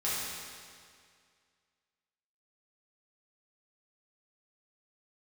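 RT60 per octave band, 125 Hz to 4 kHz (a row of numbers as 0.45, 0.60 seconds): 2.1, 2.1, 2.1, 2.1, 2.1, 1.9 seconds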